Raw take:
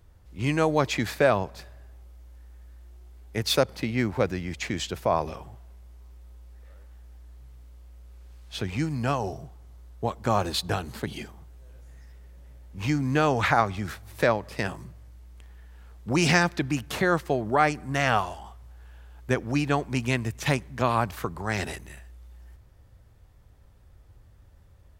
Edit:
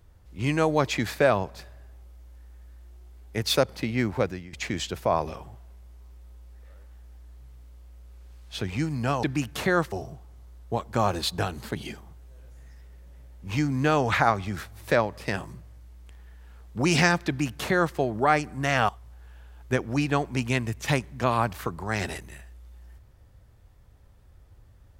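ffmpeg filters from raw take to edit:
ffmpeg -i in.wav -filter_complex "[0:a]asplit=5[link_01][link_02][link_03][link_04][link_05];[link_01]atrim=end=4.53,asetpts=PTS-STARTPTS,afade=type=out:start_time=4.18:duration=0.35:silence=0.158489[link_06];[link_02]atrim=start=4.53:end=9.232,asetpts=PTS-STARTPTS,afade=type=in:duration=0.004:curve=hsin:silence=0.158489[link_07];[link_03]atrim=start=16.578:end=17.272[link_08];[link_04]atrim=start=9.228:end=18.202[link_09];[link_05]atrim=start=18.468[link_10];[link_06][link_07]concat=n=2:v=0:a=1[link_11];[link_11][link_08]acrossfade=duration=0.004:curve1=hsin:curve2=hsin[link_12];[link_12][link_09]acrossfade=duration=0.004:curve1=hsin:curve2=hsin[link_13];[link_13][link_10]acrossfade=duration=0.004:curve1=hsin:curve2=hsin" out.wav

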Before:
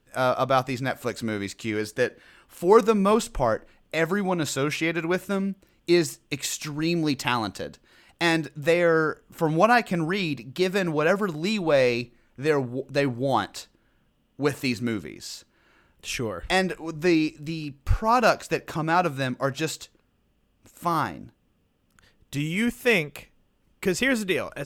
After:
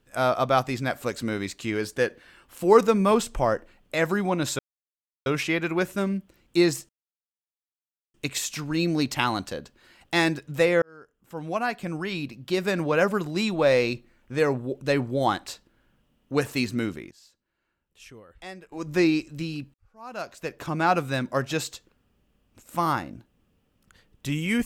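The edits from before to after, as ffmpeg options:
ffmpeg -i in.wav -filter_complex "[0:a]asplit=7[link_01][link_02][link_03][link_04][link_05][link_06][link_07];[link_01]atrim=end=4.59,asetpts=PTS-STARTPTS,afade=type=out:start_time=4.586:duration=0.004:curve=hsin,apad=pad_dur=0.67[link_08];[link_02]atrim=start=4.59:end=6.22,asetpts=PTS-STARTPTS,afade=type=in:duration=0.004:curve=hsin,afade=type=out:start_time=1.626:duration=0.004:curve=hsin,apad=pad_dur=1.25[link_09];[link_03]atrim=start=6.22:end=8.9,asetpts=PTS-STARTPTS,afade=type=in:duration=0.004:curve=hsin,afade=type=out:start_time=2.676:duration=0.004:curve=hsin[link_10];[link_04]atrim=start=8.9:end=15.19,asetpts=PTS-STARTPTS,afade=type=in:duration=2.13,afade=type=out:start_time=6.03:duration=0.26:curve=log:silence=0.125893[link_11];[link_05]atrim=start=15.19:end=16.8,asetpts=PTS-STARTPTS,volume=-18dB[link_12];[link_06]atrim=start=16.8:end=17.82,asetpts=PTS-STARTPTS,afade=type=in:duration=0.26:curve=log:silence=0.125893,afade=type=out:start_time=1.016:duration=0.004:curve=hsin[link_13];[link_07]atrim=start=17.82,asetpts=PTS-STARTPTS,afade=type=in:duration=1.06:curve=qua[link_14];[link_08][link_09][link_10][link_11][link_12][link_13][link_14]concat=n=7:v=0:a=1" out.wav

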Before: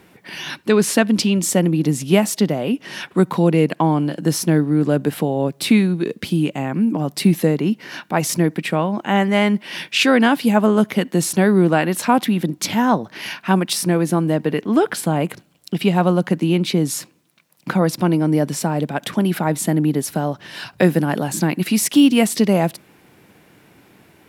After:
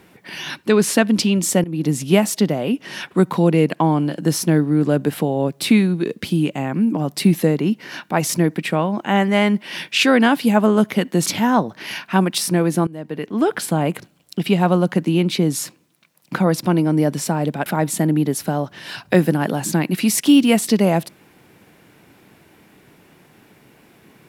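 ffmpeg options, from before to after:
ffmpeg -i in.wav -filter_complex "[0:a]asplit=5[link_01][link_02][link_03][link_04][link_05];[link_01]atrim=end=1.64,asetpts=PTS-STARTPTS,afade=type=out:start_time=1.636:duration=0.004:curve=hsin:silence=0.0891251[link_06];[link_02]atrim=start=1.64:end=11.262,asetpts=PTS-STARTPTS,afade=type=in:duration=0.36:curve=qsin:silence=0.0891251[link_07];[link_03]atrim=start=12.608:end=14.22,asetpts=PTS-STARTPTS,afade=type=out:start_time=1.608:duration=0.004:curve=hsin:silence=0.0841395[link_08];[link_04]atrim=start=14.22:end=19.012,asetpts=PTS-STARTPTS,afade=type=in:duration=0.74:silence=0.0841395[link_09];[link_05]atrim=start=19.338[link_10];[link_06][link_07]concat=n=2:v=0:a=1[link_11];[link_08][link_09]concat=n=2:v=0:a=1[link_12];[link_11][link_12]acrossfade=duration=0.004:curve1=hsin:curve2=hsin[link_13];[link_13][link_10]acrossfade=duration=0.004:curve1=hsin:curve2=hsin" out.wav

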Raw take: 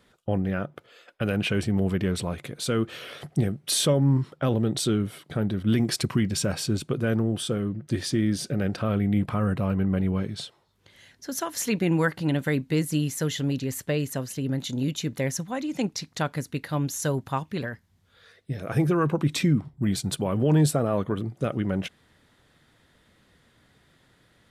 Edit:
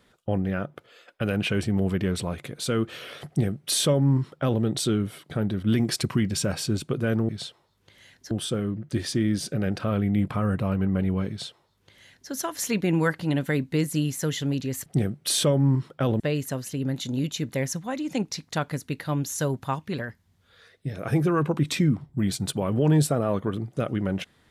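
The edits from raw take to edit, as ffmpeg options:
ffmpeg -i in.wav -filter_complex "[0:a]asplit=5[link_01][link_02][link_03][link_04][link_05];[link_01]atrim=end=7.292[link_06];[link_02]atrim=start=10.268:end=11.292[link_07];[link_03]atrim=start=7.288:end=13.842[link_08];[link_04]atrim=start=3.278:end=4.622[link_09];[link_05]atrim=start=13.838[link_10];[link_06][link_07]acrossfade=duration=0.004:curve1=hsin:curve2=hsin[link_11];[link_11][link_08]acrossfade=duration=0.004:curve1=hsin:curve2=hsin[link_12];[link_12][link_09]acrossfade=duration=0.004:curve1=hsin:curve2=hsin[link_13];[link_13][link_10]acrossfade=duration=0.004:curve1=hsin:curve2=hsin" out.wav

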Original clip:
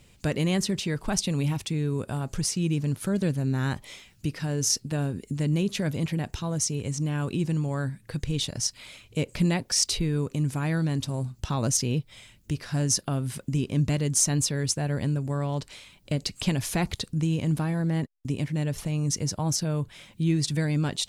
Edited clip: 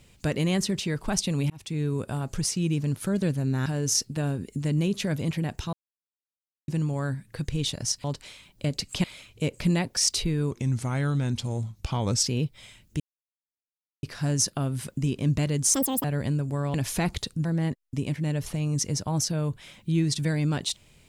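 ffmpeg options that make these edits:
ffmpeg -i in.wav -filter_complex "[0:a]asplit=14[link_01][link_02][link_03][link_04][link_05][link_06][link_07][link_08][link_09][link_10][link_11][link_12][link_13][link_14];[link_01]atrim=end=1.5,asetpts=PTS-STARTPTS,afade=type=out:start_time=1.496:duration=0.004:curve=hsin[link_15];[link_02]atrim=start=1.5:end=3.662,asetpts=PTS-STARTPTS,afade=type=in:duration=0.31[link_16];[link_03]atrim=start=4.408:end=6.48,asetpts=PTS-STARTPTS,afade=type=out:start_time=2.068:duration=0.004:curve=hsin[link_17];[link_04]atrim=start=6.48:end=7.43,asetpts=PTS-STARTPTS,volume=0[link_18];[link_05]atrim=start=7.43:end=8.792,asetpts=PTS-STARTPTS,afade=type=in:duration=0.004:curve=hsin[link_19];[link_06]atrim=start=15.508:end=16.512[link_20];[link_07]atrim=start=8.788:end=10.264[link_21];[link_08]atrim=start=10.26:end=11.8,asetpts=PTS-STARTPTS,asetrate=38808,aresample=44100[link_22];[link_09]atrim=start=11.796:end=12.54,asetpts=PTS-STARTPTS,afade=type=out:start_time=0.74:duration=0.004:curve=hsin,apad=pad_dur=1.03[link_23];[link_10]atrim=start=12.54:end=14.254,asetpts=PTS-STARTPTS,afade=type=in:duration=0.004:curve=hsin[link_24];[link_11]atrim=start=14.25:end=14.81,asetpts=PTS-STARTPTS,asetrate=82026,aresample=44100,atrim=end_sample=13277,asetpts=PTS-STARTPTS[link_25];[link_12]atrim=start=14.806:end=15.512[link_26];[link_13]atrim=start=16.508:end=17.222[link_27];[link_14]atrim=start=17.768[link_28];[link_15][link_16]concat=n=2:v=0:a=1[link_29];[link_17][link_18][link_19]concat=n=3:v=0:a=1[link_30];[link_29][link_30]acrossfade=duration=0.004:curve1=hsin:curve2=hsin[link_31];[link_31][link_20]acrossfade=duration=0.004:curve1=hsin:curve2=hsin[link_32];[link_32][link_21]acrossfade=duration=0.004:curve1=hsin:curve2=hsin[link_33];[link_33][link_22]acrossfade=duration=0.004:curve1=hsin:curve2=hsin[link_34];[link_23][link_24]concat=n=2:v=0:a=1[link_35];[link_34][link_35]acrossfade=duration=0.004:curve1=hsin:curve2=hsin[link_36];[link_36][link_25]acrossfade=duration=0.004:curve1=hsin:curve2=hsin[link_37];[link_37][link_26]acrossfade=duration=0.004:curve1=hsin:curve2=hsin[link_38];[link_38][link_27]acrossfade=duration=0.004:curve1=hsin:curve2=hsin[link_39];[link_39][link_28]acrossfade=duration=0.004:curve1=hsin:curve2=hsin" out.wav

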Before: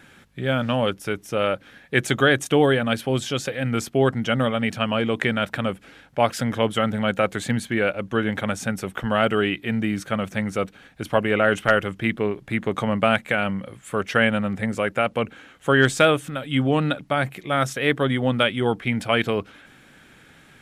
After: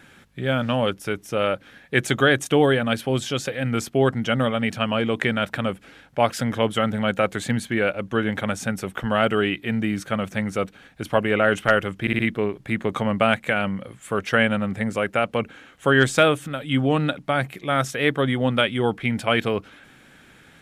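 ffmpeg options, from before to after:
ffmpeg -i in.wav -filter_complex "[0:a]asplit=4[link_01][link_02][link_03][link_04];[link_01]atrim=end=12.072[link_05];[link_02]atrim=start=12.008:end=12.072[link_06];[link_03]atrim=start=12.008:end=12.072[link_07];[link_04]atrim=start=12.008[link_08];[link_05][link_06]acrossfade=duration=0.004:curve1=hsin:curve2=hsin[link_09];[link_09][link_07]acrossfade=duration=0.004:curve1=hsin:curve2=hsin[link_10];[link_10][link_08]acrossfade=duration=0.004:curve1=hsin:curve2=hsin" out.wav

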